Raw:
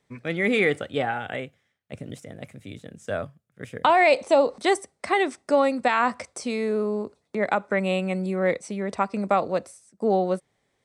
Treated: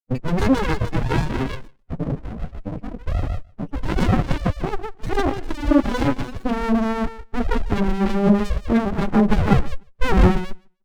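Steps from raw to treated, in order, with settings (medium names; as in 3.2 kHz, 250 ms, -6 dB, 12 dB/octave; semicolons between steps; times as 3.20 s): sawtooth pitch modulation +2.5 st, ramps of 1265 ms; high-pass 160 Hz 6 dB/octave; hum notches 50/100/150/200/250/300/350 Hz; in parallel at -1 dB: compression 6:1, threshold -36 dBFS, peak gain reduction 19 dB; on the sum: fuzz box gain 36 dB, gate -38 dBFS; loudest bins only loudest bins 4; low-pass sweep 2.4 kHz -> 410 Hz, 8.01–10.50 s; on a send: repeats whose band climbs or falls 150 ms, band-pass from 720 Hz, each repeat 1.4 oct, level -3 dB; on the sum: sliding maximum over 65 samples; trim +4 dB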